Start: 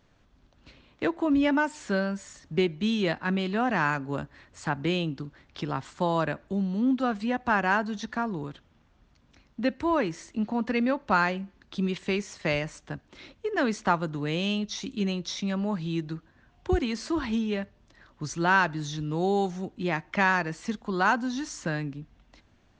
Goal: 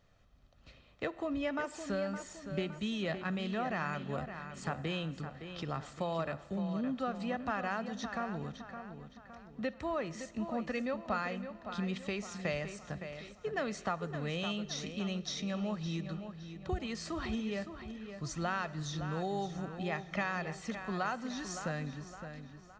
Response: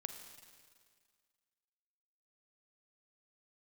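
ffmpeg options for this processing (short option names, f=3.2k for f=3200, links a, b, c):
-filter_complex "[0:a]aecho=1:1:1.6:0.46,acompressor=threshold=-28dB:ratio=2.5,asplit=2[a][b];[b]adelay=564,lowpass=f=4.3k:p=1,volume=-9dB,asplit=2[c][d];[d]adelay=564,lowpass=f=4.3k:p=1,volume=0.46,asplit=2[e][f];[f]adelay=564,lowpass=f=4.3k:p=1,volume=0.46,asplit=2[g][h];[h]adelay=564,lowpass=f=4.3k:p=1,volume=0.46,asplit=2[i][j];[j]adelay=564,lowpass=f=4.3k:p=1,volume=0.46[k];[a][c][e][g][i][k]amix=inputs=6:normalize=0,asplit=2[l][m];[1:a]atrim=start_sample=2205[n];[m][n]afir=irnorm=-1:irlink=0,volume=-6dB[o];[l][o]amix=inputs=2:normalize=0,volume=-8dB"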